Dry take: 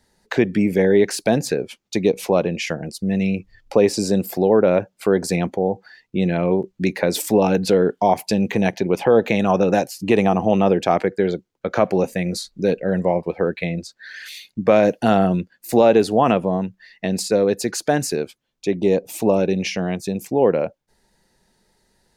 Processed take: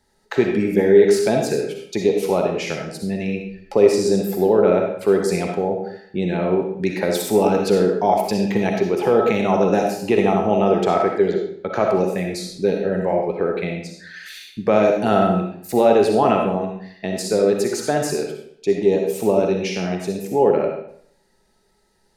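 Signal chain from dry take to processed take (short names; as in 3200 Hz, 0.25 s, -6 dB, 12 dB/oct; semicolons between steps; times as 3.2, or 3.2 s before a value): small resonant body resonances 400/840/1300 Hz, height 9 dB, ringing for 90 ms; reverb RT60 0.65 s, pre-delay 20 ms, DRR 1.5 dB; gain -3.5 dB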